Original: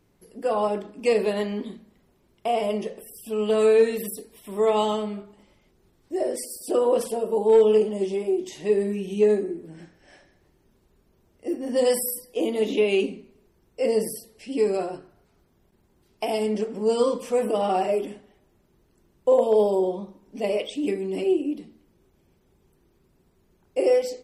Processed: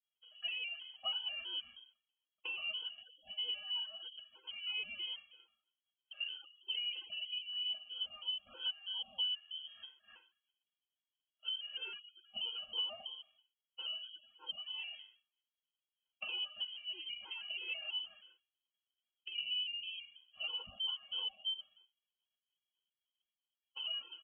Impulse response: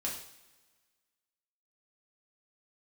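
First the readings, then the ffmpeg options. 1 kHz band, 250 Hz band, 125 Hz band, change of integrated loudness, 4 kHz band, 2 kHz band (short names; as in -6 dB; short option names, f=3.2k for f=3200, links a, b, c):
-29.0 dB, under -40 dB, n/a, -16.0 dB, +4.5 dB, -7.0 dB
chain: -af "highpass=85,aecho=1:1:6.9:0.58,agate=range=-33dB:threshold=-50dB:ratio=3:detection=peak,equalizer=f=1.4k:w=6.7:g=-10,acompressor=threshold=-31dB:ratio=5,lowpass=f=2.9k:t=q:w=0.5098,lowpass=f=2.9k:t=q:w=0.6013,lowpass=f=2.9k:t=q:w=0.9,lowpass=f=2.9k:t=q:w=2.563,afreqshift=-3400,afftfilt=real='re*gt(sin(2*PI*3.1*pts/sr)*(1-2*mod(floor(b*sr/1024/270),2)),0)':imag='im*gt(sin(2*PI*3.1*pts/sr)*(1-2*mod(floor(b*sr/1024/270),2)),0)':win_size=1024:overlap=0.75,volume=-5dB"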